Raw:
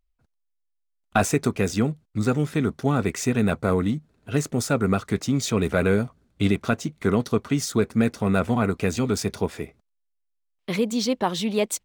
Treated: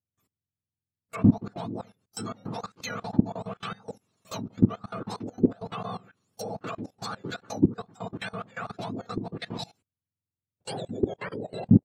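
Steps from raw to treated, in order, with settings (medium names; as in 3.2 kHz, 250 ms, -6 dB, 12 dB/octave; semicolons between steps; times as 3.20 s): spectrum inverted on a logarithmic axis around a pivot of 1.3 kHz; low-pass that closes with the level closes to 770 Hz, closed at -23.5 dBFS; level held to a coarse grid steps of 20 dB; trim +6 dB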